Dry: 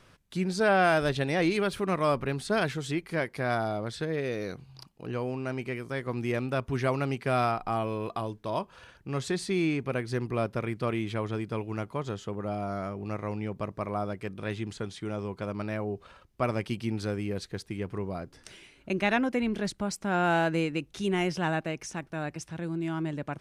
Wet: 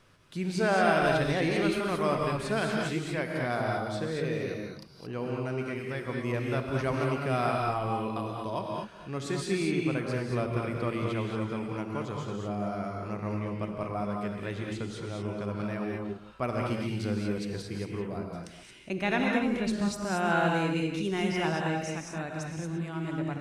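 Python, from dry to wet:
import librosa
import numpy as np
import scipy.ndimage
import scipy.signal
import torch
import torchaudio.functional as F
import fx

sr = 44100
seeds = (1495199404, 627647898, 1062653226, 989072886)

y = fx.reverse_delay(x, sr, ms=145, wet_db=-12.5)
y = fx.rev_gated(y, sr, seeds[0], gate_ms=250, shape='rising', drr_db=0.0)
y = F.gain(torch.from_numpy(y), -3.5).numpy()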